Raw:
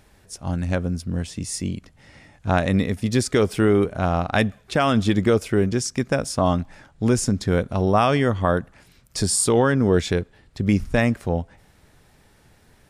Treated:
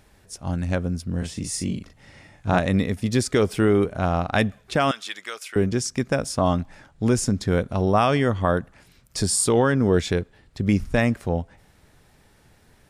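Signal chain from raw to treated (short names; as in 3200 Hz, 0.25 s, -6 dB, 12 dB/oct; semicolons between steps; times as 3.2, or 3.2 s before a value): 1.18–2.59 doubler 39 ms -4 dB; 4.91–5.56 HPF 1500 Hz 12 dB/oct; gain -1 dB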